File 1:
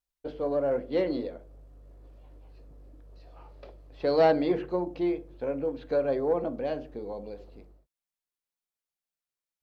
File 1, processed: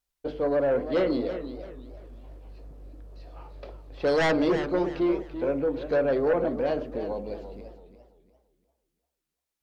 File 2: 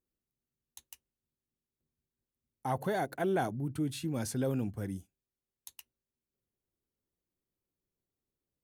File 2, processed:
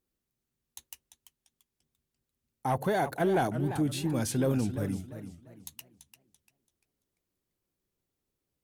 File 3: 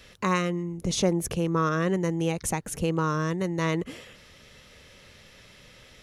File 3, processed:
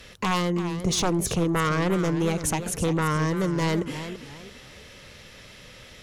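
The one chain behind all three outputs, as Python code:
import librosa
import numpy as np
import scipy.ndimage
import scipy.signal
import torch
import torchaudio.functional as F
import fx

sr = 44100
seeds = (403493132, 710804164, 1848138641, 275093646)

y = fx.fold_sine(x, sr, drive_db=10, ceiling_db=-10.0)
y = fx.echo_warbled(y, sr, ms=341, feedback_pct=32, rate_hz=2.8, cents=144, wet_db=-11)
y = y * 10.0 ** (-9.0 / 20.0)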